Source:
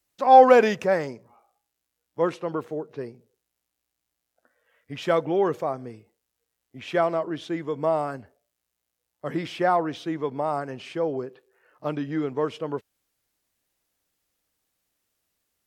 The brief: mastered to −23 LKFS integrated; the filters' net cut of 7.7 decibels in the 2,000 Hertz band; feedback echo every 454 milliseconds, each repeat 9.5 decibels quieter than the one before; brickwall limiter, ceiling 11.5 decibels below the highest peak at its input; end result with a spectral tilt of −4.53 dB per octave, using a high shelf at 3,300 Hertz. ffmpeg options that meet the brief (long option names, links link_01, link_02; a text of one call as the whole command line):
ffmpeg -i in.wav -af "equalizer=frequency=2000:width_type=o:gain=-8.5,highshelf=frequency=3300:gain=-7.5,alimiter=limit=-15.5dB:level=0:latency=1,aecho=1:1:454|908|1362|1816:0.335|0.111|0.0365|0.012,volume=6dB" out.wav